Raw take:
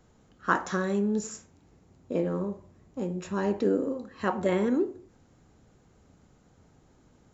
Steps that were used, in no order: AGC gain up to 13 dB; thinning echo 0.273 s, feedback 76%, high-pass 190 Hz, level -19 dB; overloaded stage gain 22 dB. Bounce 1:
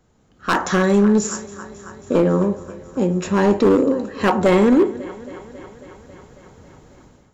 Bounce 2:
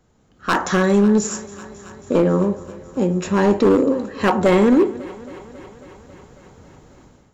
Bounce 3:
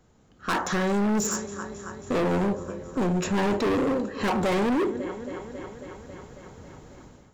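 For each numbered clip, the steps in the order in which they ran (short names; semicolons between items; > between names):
thinning echo > overloaded stage > AGC; overloaded stage > thinning echo > AGC; thinning echo > AGC > overloaded stage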